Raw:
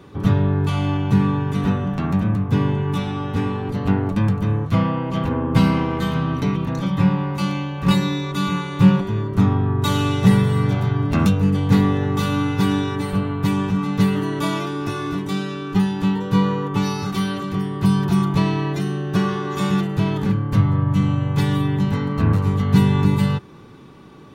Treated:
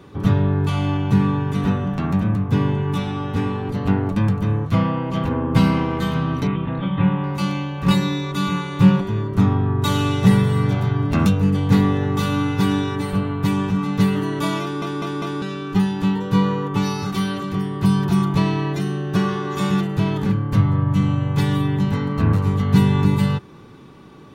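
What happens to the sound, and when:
6.47–7.24 s: elliptic low-pass 3.4 kHz, stop band 50 dB
14.62 s: stutter in place 0.20 s, 4 plays

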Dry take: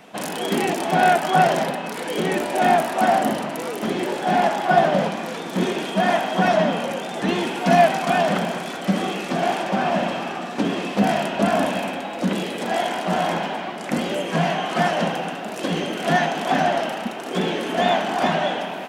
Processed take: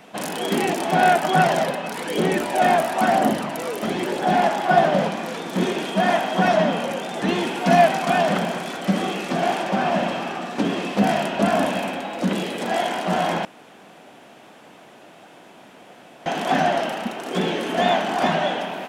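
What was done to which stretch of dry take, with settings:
1.24–4.32 s: phaser 1 Hz, delay 2 ms, feedback 28%
13.45–16.26 s: room tone

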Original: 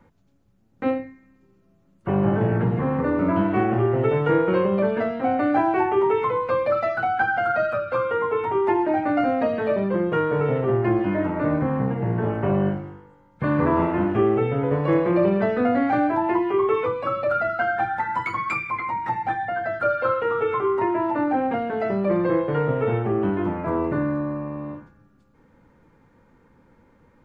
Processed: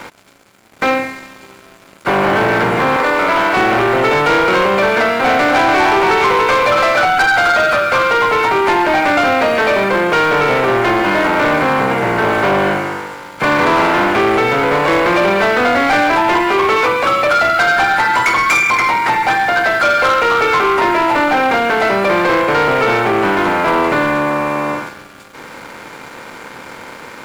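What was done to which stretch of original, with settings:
2.96–3.57 s: high-pass 520 Hz
4.97–7.05 s: delay 287 ms -5.5 dB
whole clip: spectral levelling over time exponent 0.6; tilt EQ +4.5 dB/octave; waveshaping leveller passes 3

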